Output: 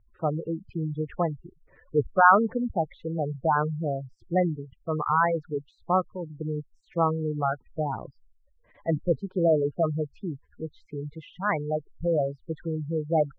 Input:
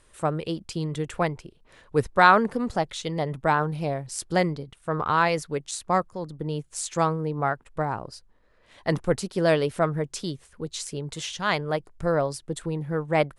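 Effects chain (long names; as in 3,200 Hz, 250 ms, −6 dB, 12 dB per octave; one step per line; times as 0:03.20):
gate on every frequency bin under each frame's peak −10 dB strong
low-pass filter 2,100 Hz 24 dB per octave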